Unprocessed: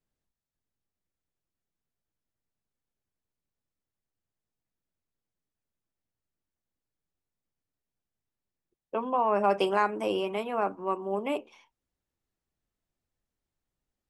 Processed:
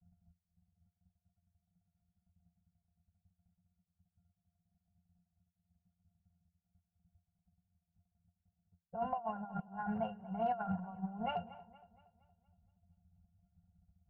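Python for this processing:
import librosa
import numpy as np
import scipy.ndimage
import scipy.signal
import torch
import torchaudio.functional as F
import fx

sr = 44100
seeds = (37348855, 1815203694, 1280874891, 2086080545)

y = fx.law_mismatch(x, sr, coded='mu')
y = fx.octave_resonator(y, sr, note='F', decay_s=0.13)
y = fx.over_compress(y, sr, threshold_db=-46.0, ratio=-0.5)
y = np.clip(y, -10.0 ** (-34.5 / 20.0), 10.0 ** (-34.5 / 20.0))
y = scipy.signal.sosfilt(scipy.signal.cheby1(2, 1.0, [170.0, 690.0], 'bandstop', fs=sr, output='sos'), y)
y = fx.peak_eq(y, sr, hz=3300.0, db=-9.5, octaves=0.3)
y = fx.env_lowpass(y, sr, base_hz=370.0, full_db=-40.5)
y = fx.high_shelf(y, sr, hz=2400.0, db=-7.0)
y = fx.echo_wet_lowpass(y, sr, ms=234, feedback_pct=46, hz=3400.0, wet_db=-17.5)
y = F.gain(torch.from_numpy(y), 13.5).numpy()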